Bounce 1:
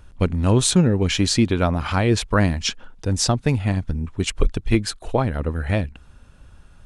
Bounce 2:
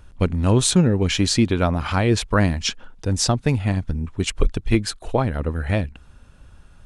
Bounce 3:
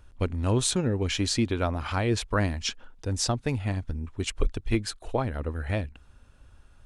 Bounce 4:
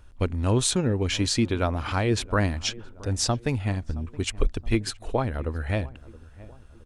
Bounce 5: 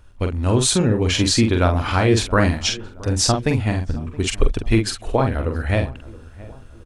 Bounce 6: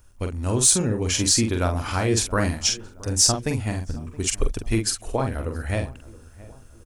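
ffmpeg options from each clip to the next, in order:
ffmpeg -i in.wav -af anull out.wav
ffmpeg -i in.wav -af "equalizer=frequency=170:width_type=o:width=0.4:gain=-8.5,volume=-6.5dB" out.wav
ffmpeg -i in.wav -filter_complex "[0:a]asplit=2[link_01][link_02];[link_02]adelay=671,lowpass=frequency=1200:poles=1,volume=-19.5dB,asplit=2[link_03][link_04];[link_04]adelay=671,lowpass=frequency=1200:poles=1,volume=0.48,asplit=2[link_05][link_06];[link_06]adelay=671,lowpass=frequency=1200:poles=1,volume=0.48,asplit=2[link_07][link_08];[link_08]adelay=671,lowpass=frequency=1200:poles=1,volume=0.48[link_09];[link_01][link_03][link_05][link_07][link_09]amix=inputs=5:normalize=0,volume=2dB" out.wav
ffmpeg -i in.wav -filter_complex "[0:a]dynaudnorm=framelen=360:gausssize=3:maxgain=4.5dB,asplit=2[link_01][link_02];[link_02]adelay=45,volume=-5.5dB[link_03];[link_01][link_03]amix=inputs=2:normalize=0,volume=2dB" out.wav
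ffmpeg -i in.wav -af "aexciter=amount=3.8:drive=5:freq=5200,volume=-6dB" out.wav

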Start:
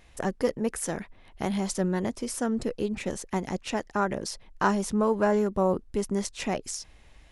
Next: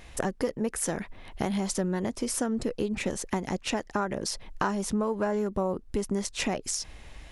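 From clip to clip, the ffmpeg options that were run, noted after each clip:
ffmpeg -i in.wav -af "acompressor=threshold=-35dB:ratio=4,volume=8dB" out.wav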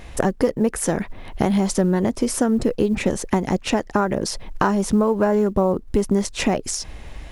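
ffmpeg -i in.wav -af "acrusher=bits=9:mode=log:mix=0:aa=0.000001,tiltshelf=frequency=1300:gain=3,volume=7.5dB" out.wav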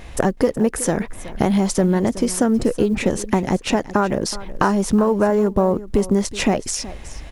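ffmpeg -i in.wav -af "aecho=1:1:372:0.15,volume=1.5dB" out.wav

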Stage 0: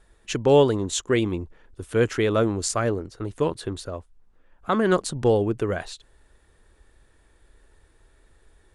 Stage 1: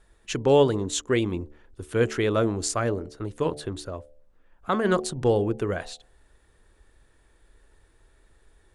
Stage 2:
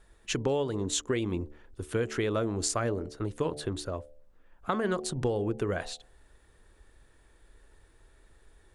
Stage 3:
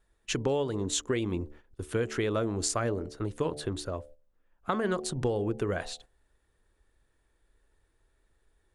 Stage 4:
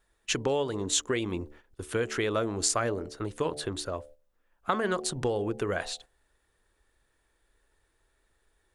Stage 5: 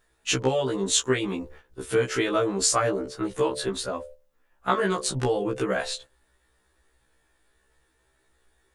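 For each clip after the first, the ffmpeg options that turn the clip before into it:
ffmpeg -i in.wav -af "bandreject=frequency=73.67:width_type=h:width=4,bandreject=frequency=147.34:width_type=h:width=4,bandreject=frequency=221.01:width_type=h:width=4,bandreject=frequency=294.68:width_type=h:width=4,bandreject=frequency=368.35:width_type=h:width=4,bandreject=frequency=442.02:width_type=h:width=4,bandreject=frequency=515.69:width_type=h:width=4,bandreject=frequency=589.36:width_type=h:width=4,bandreject=frequency=663.03:width_type=h:width=4,bandreject=frequency=736.7:width_type=h:width=4,bandreject=frequency=810.37:width_type=h:width=4,volume=-1.5dB" out.wav
ffmpeg -i in.wav -af "acompressor=threshold=-25dB:ratio=12" out.wav
ffmpeg -i in.wav -af "agate=range=-11dB:threshold=-49dB:ratio=16:detection=peak" out.wav
ffmpeg -i in.wav -af "lowshelf=frequency=410:gain=-7.5,volume=4dB" out.wav
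ffmpeg -i in.wav -af "afftfilt=real='re*1.73*eq(mod(b,3),0)':imag='im*1.73*eq(mod(b,3),0)':win_size=2048:overlap=0.75,volume=7dB" out.wav

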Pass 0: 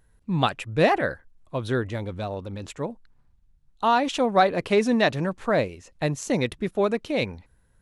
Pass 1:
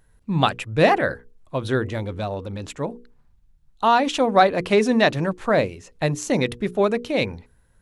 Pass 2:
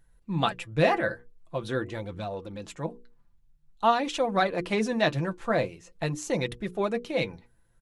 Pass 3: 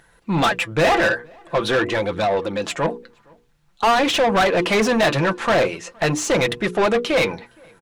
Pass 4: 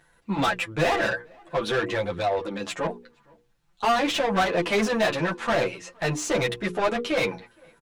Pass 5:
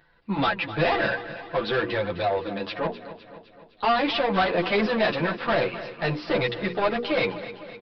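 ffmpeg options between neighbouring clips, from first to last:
ffmpeg -i in.wav -af "bandreject=frequency=60:width_type=h:width=6,bandreject=frequency=120:width_type=h:width=6,bandreject=frequency=180:width_type=h:width=6,bandreject=frequency=240:width_type=h:width=6,bandreject=frequency=300:width_type=h:width=6,bandreject=frequency=360:width_type=h:width=6,bandreject=frequency=420:width_type=h:width=6,bandreject=frequency=480:width_type=h:width=6,volume=3.5dB" out.wav
ffmpeg -i in.wav -af "aecho=1:1:5.9:0.41,flanger=delay=0.5:depth=9:regen=56:speed=0.46:shape=triangular,volume=-3dB" out.wav
ffmpeg -i in.wav -filter_complex "[0:a]asplit=2[link_01][link_02];[link_02]highpass=frequency=720:poles=1,volume=29dB,asoftclip=type=tanh:threshold=-9dB[link_03];[link_01][link_03]amix=inputs=2:normalize=0,lowpass=frequency=3300:poles=1,volume=-6dB,asplit=2[link_04][link_05];[link_05]adelay=466.5,volume=-29dB,highshelf=frequency=4000:gain=-10.5[link_06];[link_04][link_06]amix=inputs=2:normalize=0" out.wav
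ffmpeg -i in.wav -filter_complex "[0:a]asplit=2[link_01][link_02];[link_02]adelay=9.5,afreqshift=-1.3[link_03];[link_01][link_03]amix=inputs=2:normalize=1,volume=-3dB" out.wav
ffmpeg -i in.wav -af "aecho=1:1:255|510|765|1020|1275|1530:0.2|0.114|0.0648|0.037|0.0211|0.012,aresample=11025,aresample=44100" out.wav

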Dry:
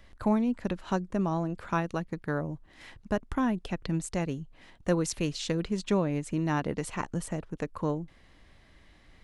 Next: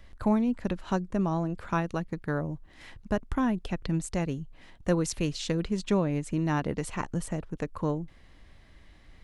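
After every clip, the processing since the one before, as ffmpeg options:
ffmpeg -i in.wav -af "lowshelf=frequency=110:gain=5.5" out.wav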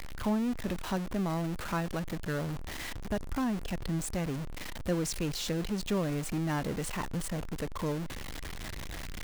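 ffmpeg -i in.wav -af "aeval=exprs='val(0)+0.5*0.0473*sgn(val(0))':channel_layout=same,volume=-7dB" out.wav

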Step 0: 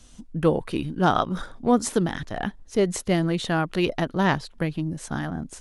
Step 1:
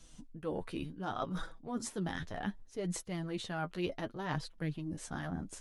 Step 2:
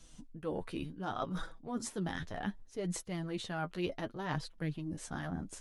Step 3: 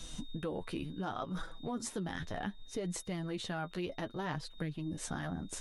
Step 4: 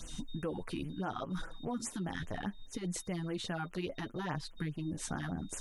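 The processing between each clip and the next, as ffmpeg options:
ffmpeg -i in.wav -af "areverse,acompressor=threshold=-27dB:ratio=12,areverse,flanger=delay=6:depth=5.6:regen=27:speed=0.67:shape=sinusoidal,volume=-3dB" out.wav
ffmpeg -i in.wav -af anull out.wav
ffmpeg -i in.wav -af "aeval=exprs='val(0)+0.000708*sin(2*PI*3700*n/s)':channel_layout=same,acompressor=threshold=-47dB:ratio=6,volume=11dB" out.wav
ffmpeg -i in.wav -af "afftfilt=real='re*(1-between(b*sr/1024,460*pow(4700/460,0.5+0.5*sin(2*PI*4.9*pts/sr))/1.41,460*pow(4700/460,0.5+0.5*sin(2*PI*4.9*pts/sr))*1.41))':imag='im*(1-between(b*sr/1024,460*pow(4700/460,0.5+0.5*sin(2*PI*4.9*pts/sr))/1.41,460*pow(4700/460,0.5+0.5*sin(2*PI*4.9*pts/sr))*1.41))':win_size=1024:overlap=0.75,volume=1dB" out.wav

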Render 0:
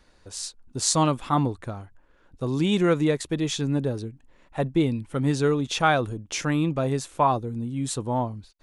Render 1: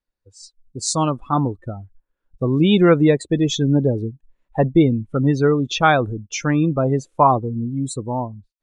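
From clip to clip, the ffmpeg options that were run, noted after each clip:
ffmpeg -i in.wav -af "afftdn=noise_reduction=28:noise_floor=-31,dynaudnorm=framelen=160:gausssize=13:maxgain=15.5dB,volume=-1dB" out.wav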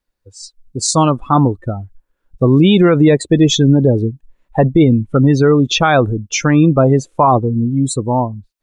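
ffmpeg -i in.wav -af "alimiter=level_in=9.5dB:limit=-1dB:release=50:level=0:latency=1,volume=-1dB" out.wav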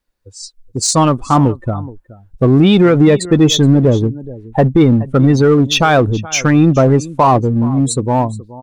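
ffmpeg -i in.wav -filter_complex "[0:a]aecho=1:1:423:0.1,asplit=2[link_01][link_02];[link_02]volume=15dB,asoftclip=hard,volume=-15dB,volume=-5.5dB[link_03];[link_01][link_03]amix=inputs=2:normalize=0,volume=-1dB" out.wav

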